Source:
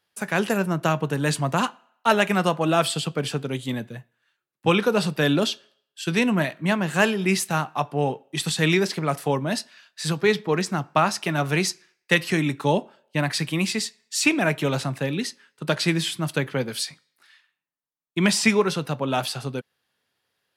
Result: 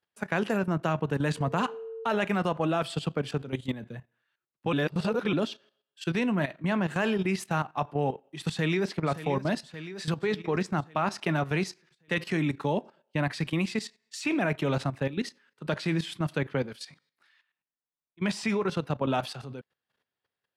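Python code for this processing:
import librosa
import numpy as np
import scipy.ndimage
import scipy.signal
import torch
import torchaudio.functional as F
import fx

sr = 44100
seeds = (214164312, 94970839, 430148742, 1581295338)

y = fx.dmg_tone(x, sr, hz=450.0, level_db=-35.0, at=(1.36, 2.16), fade=0.02)
y = fx.echo_throw(y, sr, start_s=8.49, length_s=0.51, ms=570, feedback_pct=60, wet_db=-11.5)
y = fx.auto_swell(y, sr, attack_ms=481.0, at=(16.72, 18.21), fade=0.02)
y = fx.edit(y, sr, fx.reverse_span(start_s=4.73, length_s=0.6), tone=tone)
y = fx.lowpass(y, sr, hz=2600.0, slope=6)
y = fx.level_steps(y, sr, step_db=13)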